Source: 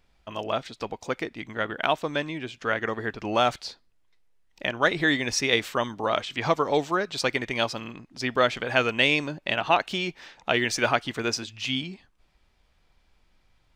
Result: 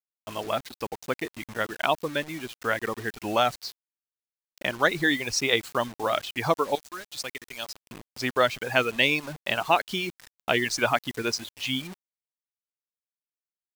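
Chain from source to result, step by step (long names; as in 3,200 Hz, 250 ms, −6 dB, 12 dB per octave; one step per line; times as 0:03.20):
0:06.75–0:07.91: first-order pre-emphasis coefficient 0.8
reverb reduction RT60 0.96 s
bit reduction 7 bits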